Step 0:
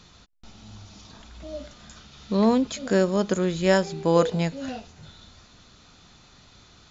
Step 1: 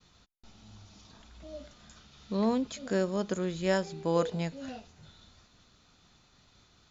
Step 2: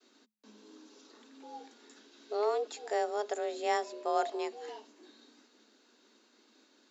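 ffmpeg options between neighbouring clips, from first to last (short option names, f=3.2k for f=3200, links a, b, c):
-af "agate=range=-33dB:threshold=-50dB:ratio=3:detection=peak,volume=-8dB"
-af "afreqshift=210,volume=-3dB"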